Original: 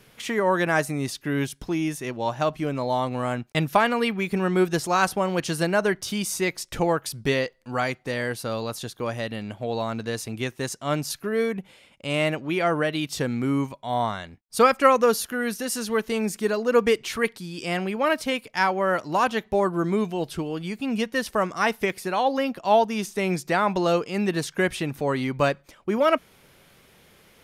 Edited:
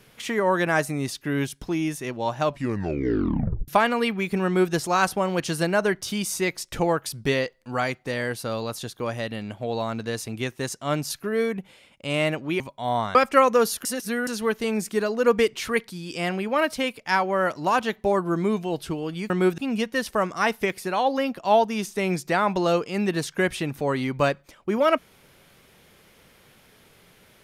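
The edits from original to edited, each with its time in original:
2.44 tape stop 1.24 s
4.45–4.73 copy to 20.78
12.6–13.65 cut
14.2–14.63 cut
15.33–15.75 reverse

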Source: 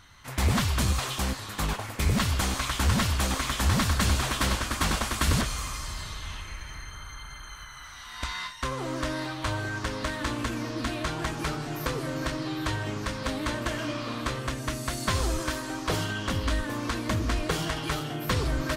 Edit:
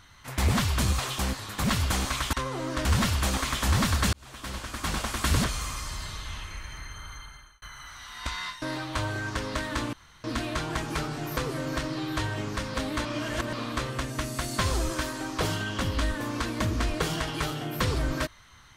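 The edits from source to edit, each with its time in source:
1.64–2.13 cut
4.1–5.31 fade in
7.1–7.59 fade out
8.59–9.11 move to 2.82
10.42–10.73 room tone
13.54–14.02 reverse

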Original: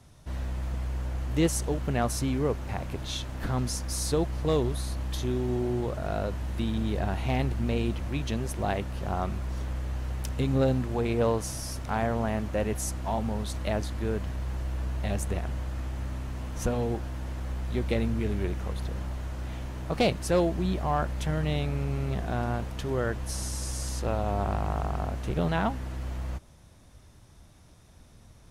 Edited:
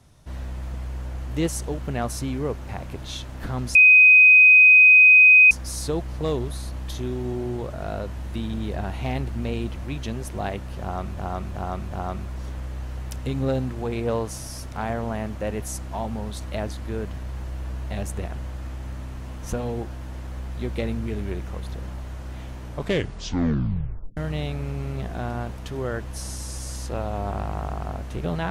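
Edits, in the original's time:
3.75 add tone 2510 Hz -8.5 dBFS 1.76 s
9.04–9.41 loop, 4 plays
19.76 tape stop 1.54 s

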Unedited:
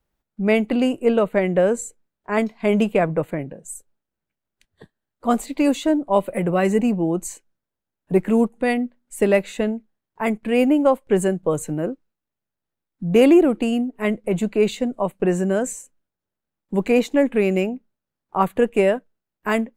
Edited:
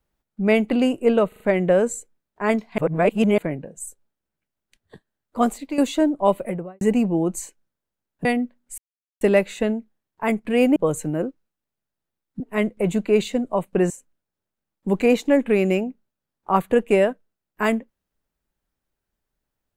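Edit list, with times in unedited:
1.28 stutter 0.04 s, 4 plays
2.66–3.26 reverse
5.29–5.66 fade out, to -11 dB
6.19–6.69 studio fade out
8.13–8.66 cut
9.19 insert silence 0.43 s
10.74–11.4 cut
13.04–13.87 cut
15.37–15.76 cut

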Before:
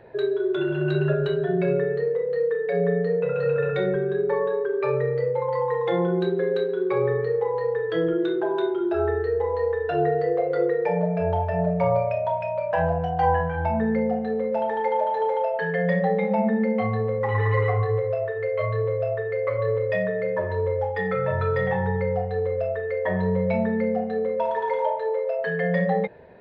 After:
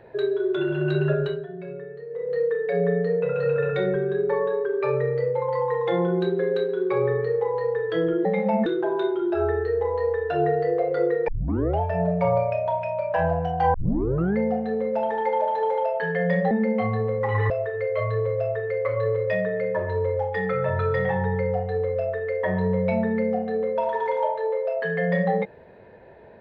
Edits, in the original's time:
1.2–2.35 dip -13.5 dB, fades 0.27 s
10.87 tape start 0.52 s
13.33 tape start 0.63 s
16.1–16.51 move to 8.25
17.5–18.12 cut

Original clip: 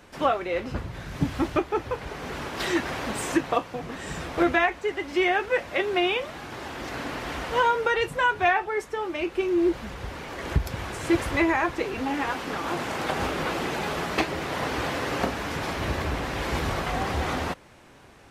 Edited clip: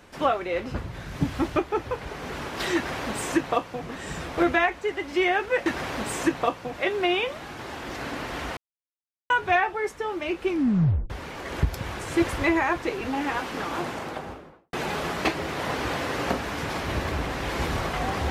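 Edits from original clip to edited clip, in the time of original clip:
2.75–3.82 copy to 5.66
7.5–8.23 mute
9.42 tape stop 0.61 s
12.58–13.66 studio fade out

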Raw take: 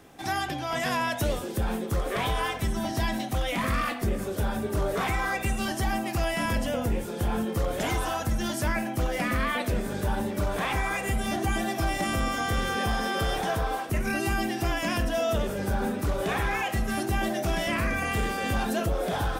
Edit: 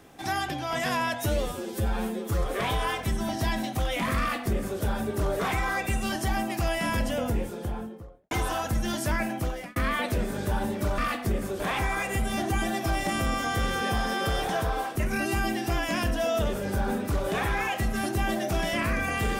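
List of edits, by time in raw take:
1.14–2.02 stretch 1.5×
3.75–4.37 copy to 10.54
6.78–7.87 studio fade out
8.92–9.32 fade out

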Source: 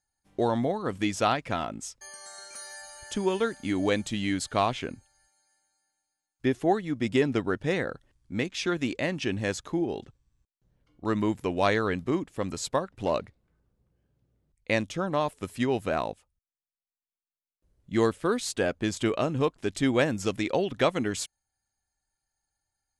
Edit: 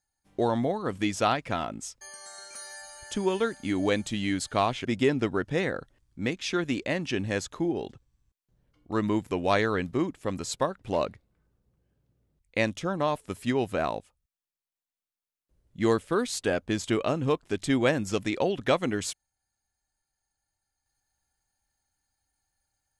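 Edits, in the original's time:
4.85–6.98 cut

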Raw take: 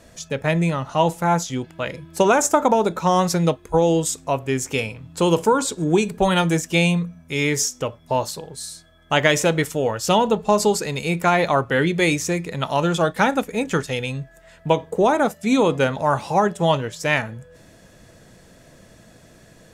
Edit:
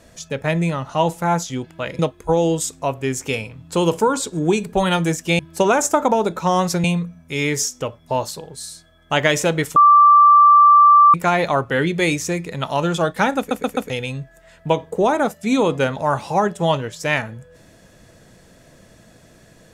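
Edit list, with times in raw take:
1.99–3.44 move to 6.84
9.76–11.14 bleep 1170 Hz -6.5 dBFS
13.38 stutter in place 0.13 s, 4 plays

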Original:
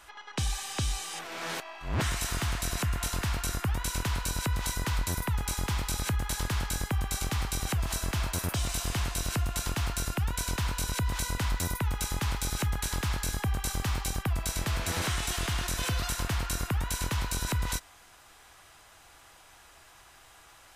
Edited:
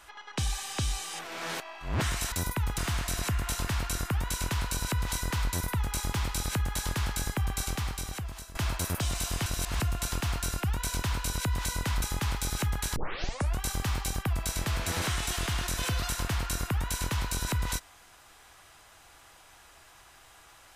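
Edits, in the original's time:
7.15–8.09 fade out, to -17 dB
9–9.34 reverse
11.56–12.02 move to 2.32
12.96 tape start 0.65 s

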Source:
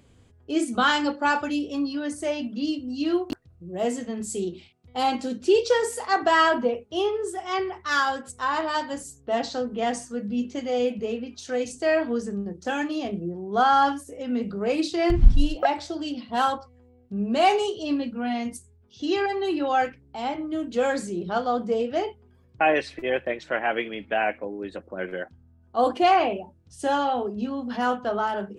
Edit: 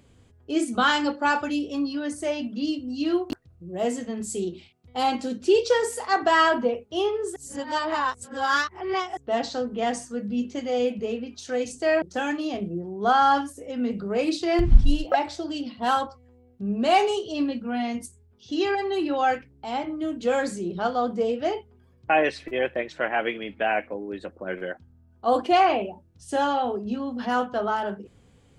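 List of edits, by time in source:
7.36–9.17 reverse
12.02–12.53 cut

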